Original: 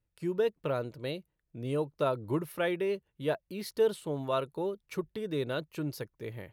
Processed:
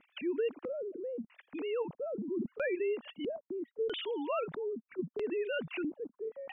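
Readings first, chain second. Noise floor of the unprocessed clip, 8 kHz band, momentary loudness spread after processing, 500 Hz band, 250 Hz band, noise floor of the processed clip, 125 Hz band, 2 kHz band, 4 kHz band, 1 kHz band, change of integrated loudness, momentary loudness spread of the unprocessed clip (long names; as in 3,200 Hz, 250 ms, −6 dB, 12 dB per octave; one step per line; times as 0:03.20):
−81 dBFS, below −30 dB, 7 LU, −3.0 dB, −2.5 dB, −82 dBFS, −14.0 dB, −1.5 dB, −1.5 dB, −6.5 dB, −3.5 dB, 9 LU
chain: three sine waves on the formant tracks
auto-filter low-pass square 0.77 Hz 240–3,000 Hz
envelope flattener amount 70%
level −7.5 dB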